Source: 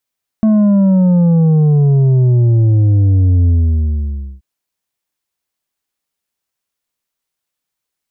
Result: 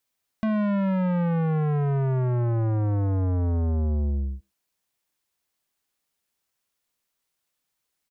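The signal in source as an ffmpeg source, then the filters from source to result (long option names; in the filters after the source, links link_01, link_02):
-f lavfi -i "aevalsrc='0.398*clip((3.98-t)/0.93,0,1)*tanh(2*sin(2*PI*220*3.98/log(65/220)*(exp(log(65/220)*t/3.98)-1)))/tanh(2)':duration=3.98:sample_rate=44100"
-filter_complex "[0:a]acompressor=threshold=-14dB:ratio=6,asoftclip=type=tanh:threshold=-22.5dB,asplit=2[link_01][link_02];[link_02]adelay=110,highpass=300,lowpass=3400,asoftclip=type=hard:threshold=-31.5dB,volume=-22dB[link_03];[link_01][link_03]amix=inputs=2:normalize=0"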